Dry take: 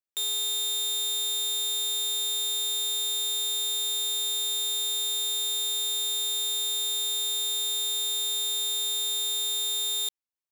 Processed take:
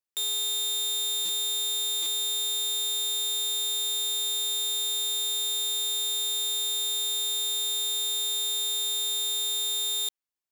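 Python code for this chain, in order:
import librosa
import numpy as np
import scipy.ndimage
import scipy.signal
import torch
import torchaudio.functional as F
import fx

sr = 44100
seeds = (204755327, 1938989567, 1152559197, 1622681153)

y = fx.highpass(x, sr, hz=130.0, slope=24, at=(8.19, 8.84))
y = fx.buffer_glitch(y, sr, at_s=(1.25, 2.02), block=256, repeats=6)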